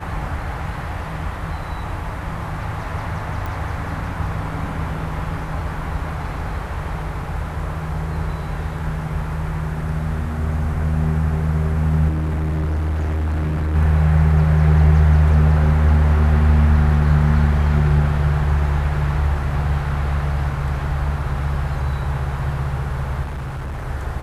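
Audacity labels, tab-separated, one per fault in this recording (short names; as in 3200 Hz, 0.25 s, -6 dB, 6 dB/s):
3.460000	3.460000	pop
12.080000	13.760000	clipped -18 dBFS
23.240000	23.870000	clipped -24 dBFS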